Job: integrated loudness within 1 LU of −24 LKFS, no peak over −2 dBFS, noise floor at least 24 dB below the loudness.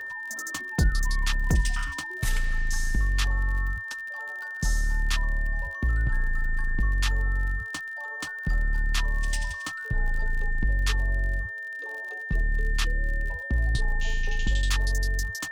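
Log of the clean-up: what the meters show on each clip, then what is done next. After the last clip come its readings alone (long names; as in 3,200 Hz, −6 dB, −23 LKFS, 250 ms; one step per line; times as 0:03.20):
crackle rate 44 per second; interfering tone 1,800 Hz; level of the tone −33 dBFS; integrated loudness −29.0 LKFS; sample peak −11.0 dBFS; target loudness −24.0 LKFS
→ click removal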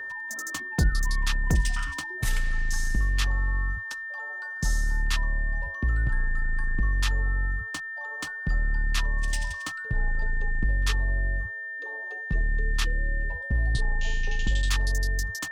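crackle rate 0.77 per second; interfering tone 1,800 Hz; level of the tone −33 dBFS
→ notch filter 1,800 Hz, Q 30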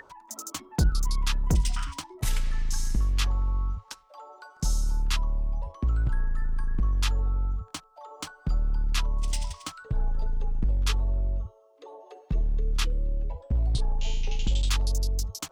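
interfering tone none found; integrated loudness −30.0 LKFS; sample peak −10.5 dBFS; target loudness −24.0 LKFS
→ level +6 dB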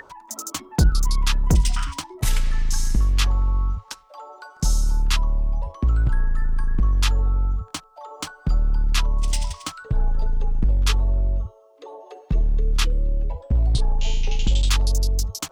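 integrated loudness −24.0 LKFS; sample peak −4.5 dBFS; background noise floor −50 dBFS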